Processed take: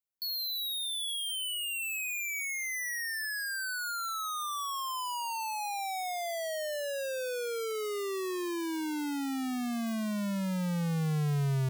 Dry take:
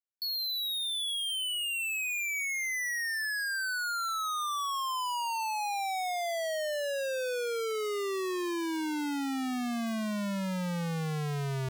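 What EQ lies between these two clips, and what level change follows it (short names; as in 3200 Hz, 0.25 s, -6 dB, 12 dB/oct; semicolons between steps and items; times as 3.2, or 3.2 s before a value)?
bell 140 Hz +5.5 dB 0.71 oct; low shelf 440 Hz +3 dB; high shelf 8400 Hz +8.5 dB; -3.5 dB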